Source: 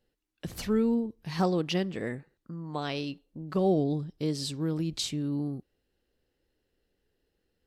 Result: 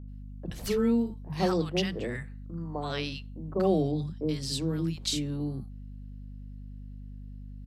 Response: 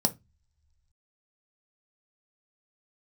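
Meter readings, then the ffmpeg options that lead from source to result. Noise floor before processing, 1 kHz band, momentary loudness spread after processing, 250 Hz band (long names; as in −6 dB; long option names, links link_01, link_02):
−80 dBFS, −0.5 dB, 19 LU, −0.5 dB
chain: -filter_complex "[0:a]acrossover=split=240|950[link_01][link_02][link_03];[link_01]adelay=30[link_04];[link_03]adelay=80[link_05];[link_04][link_02][link_05]amix=inputs=3:normalize=0,aeval=exprs='val(0)+0.00708*(sin(2*PI*50*n/s)+sin(2*PI*2*50*n/s)/2+sin(2*PI*3*50*n/s)/3+sin(2*PI*4*50*n/s)/4+sin(2*PI*5*50*n/s)/5)':channel_layout=same,volume=2dB"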